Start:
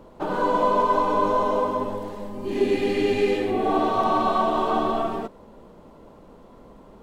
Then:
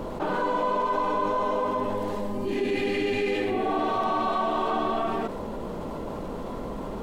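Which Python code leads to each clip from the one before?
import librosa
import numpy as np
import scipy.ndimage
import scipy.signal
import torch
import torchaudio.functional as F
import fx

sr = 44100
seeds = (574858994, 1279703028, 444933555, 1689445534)

y = fx.dynamic_eq(x, sr, hz=2100.0, q=1.1, threshold_db=-42.0, ratio=4.0, max_db=5)
y = fx.env_flatten(y, sr, amount_pct=70)
y = y * librosa.db_to_amplitude(-8.0)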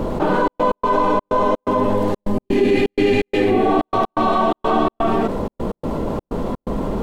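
y = fx.low_shelf(x, sr, hz=480.0, db=6.5)
y = fx.step_gate(y, sr, bpm=126, pattern='xxxx.x.xxx.xx.', floor_db=-60.0, edge_ms=4.5)
y = y * librosa.db_to_amplitude(7.0)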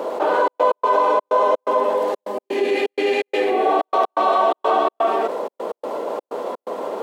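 y = fx.ladder_highpass(x, sr, hz=400.0, resonance_pct=30)
y = y * librosa.db_to_amplitude(6.0)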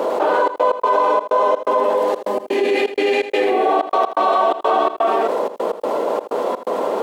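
y = x + 10.0 ** (-23.5 / 20.0) * np.pad(x, (int(81 * sr / 1000.0), 0))[:len(x)]
y = fx.env_flatten(y, sr, amount_pct=50)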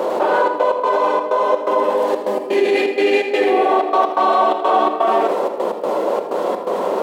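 y = fx.room_shoebox(x, sr, seeds[0], volume_m3=1500.0, walls='mixed', distance_m=1.0)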